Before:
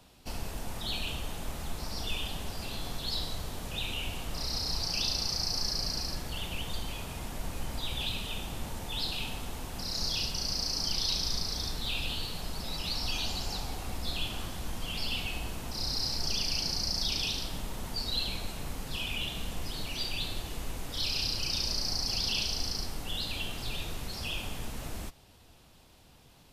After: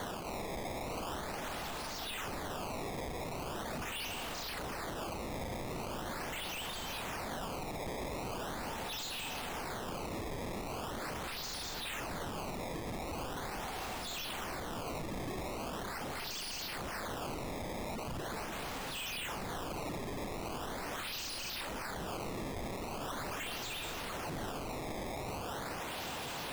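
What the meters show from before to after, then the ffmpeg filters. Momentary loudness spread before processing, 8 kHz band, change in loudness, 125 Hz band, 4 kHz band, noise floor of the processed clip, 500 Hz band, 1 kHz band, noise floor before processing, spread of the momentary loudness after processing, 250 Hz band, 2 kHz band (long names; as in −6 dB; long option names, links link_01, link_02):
10 LU, −6.5 dB, −6.5 dB, −5.5 dB, −11.0 dB, −41 dBFS, +4.5 dB, +4.0 dB, −57 dBFS, 2 LU, 0.0 dB, −1.0 dB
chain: -filter_complex "[0:a]areverse,acompressor=threshold=-44dB:ratio=5,areverse,asplit=2[link_01][link_02];[link_02]highpass=frequency=720:poles=1,volume=34dB,asoftclip=type=tanh:threshold=-31.5dB[link_03];[link_01][link_03]amix=inputs=2:normalize=0,lowpass=frequency=2300:poles=1,volume=-6dB,acrusher=samples=17:mix=1:aa=0.000001:lfo=1:lforange=27.2:lforate=0.41,alimiter=level_in=17dB:limit=-24dB:level=0:latency=1:release=32,volume=-17dB,volume=6dB"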